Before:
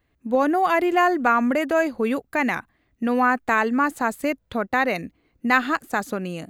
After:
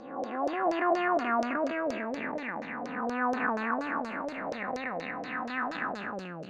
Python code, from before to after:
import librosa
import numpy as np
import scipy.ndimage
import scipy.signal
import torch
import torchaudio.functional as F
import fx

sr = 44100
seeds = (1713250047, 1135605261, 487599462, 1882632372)

y = fx.spec_blur(x, sr, span_ms=598.0)
y = fx.filter_lfo_lowpass(y, sr, shape='saw_down', hz=4.2, low_hz=510.0, high_hz=5700.0, q=4.8)
y = y * librosa.db_to_amplitude(-6.5)